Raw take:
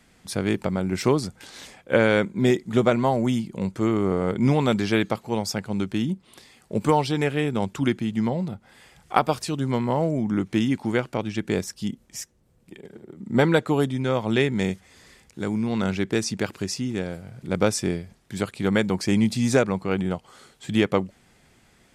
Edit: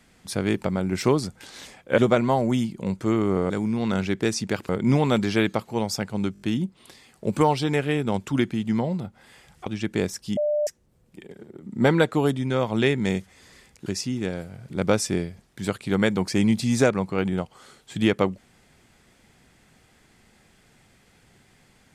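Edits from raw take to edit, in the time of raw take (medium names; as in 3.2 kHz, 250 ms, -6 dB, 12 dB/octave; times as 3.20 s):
1.98–2.73 s: delete
5.89 s: stutter 0.02 s, 5 plays
9.14–11.20 s: delete
11.91–12.21 s: bleep 596 Hz -20 dBFS
15.40–16.59 s: move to 4.25 s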